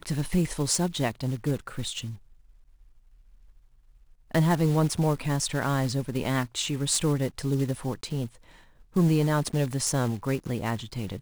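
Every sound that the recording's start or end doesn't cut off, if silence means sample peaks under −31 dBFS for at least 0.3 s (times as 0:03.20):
0:04.35–0:08.27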